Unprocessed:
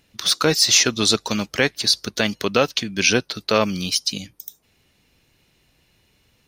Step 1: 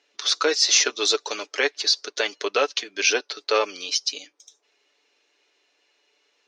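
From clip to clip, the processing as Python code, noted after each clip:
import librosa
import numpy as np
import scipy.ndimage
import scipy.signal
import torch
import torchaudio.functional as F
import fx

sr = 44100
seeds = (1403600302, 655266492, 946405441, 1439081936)

y = scipy.signal.sosfilt(scipy.signal.ellip(3, 1.0, 40, [380.0, 6500.0], 'bandpass', fs=sr, output='sos'), x)
y = y + 0.48 * np.pad(y, (int(6.9 * sr / 1000.0), 0))[:len(y)]
y = F.gain(torch.from_numpy(y), -3.0).numpy()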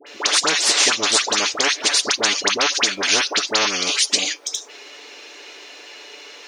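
y = fx.dispersion(x, sr, late='highs', ms=70.0, hz=1300.0)
y = fx.spectral_comp(y, sr, ratio=4.0)
y = F.gain(torch.from_numpy(y), 1.5).numpy()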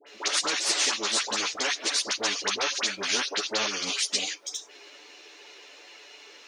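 y = fx.chorus_voices(x, sr, voices=6, hz=1.2, base_ms=12, depth_ms=3.0, mix_pct=55)
y = F.gain(torch.from_numpy(y), -6.0).numpy()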